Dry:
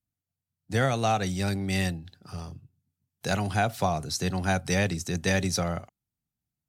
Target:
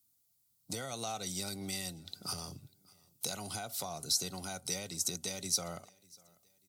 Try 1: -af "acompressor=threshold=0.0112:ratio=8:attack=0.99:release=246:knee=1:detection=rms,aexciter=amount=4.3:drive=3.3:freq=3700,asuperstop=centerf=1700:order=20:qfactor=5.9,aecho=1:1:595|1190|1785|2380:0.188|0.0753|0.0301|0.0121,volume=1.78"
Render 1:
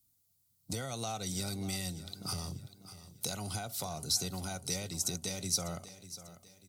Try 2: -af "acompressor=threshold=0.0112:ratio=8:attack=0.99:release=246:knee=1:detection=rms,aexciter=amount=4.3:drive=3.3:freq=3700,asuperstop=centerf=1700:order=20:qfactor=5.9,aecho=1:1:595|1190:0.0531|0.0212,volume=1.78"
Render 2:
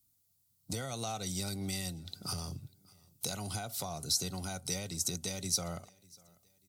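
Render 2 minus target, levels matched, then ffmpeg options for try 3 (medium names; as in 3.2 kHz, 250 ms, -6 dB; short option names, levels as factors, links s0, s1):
250 Hz band +3.0 dB
-af "acompressor=threshold=0.0112:ratio=8:attack=0.99:release=246:knee=1:detection=rms,highpass=f=230:p=1,aexciter=amount=4.3:drive=3.3:freq=3700,asuperstop=centerf=1700:order=20:qfactor=5.9,aecho=1:1:595|1190:0.0531|0.0212,volume=1.78"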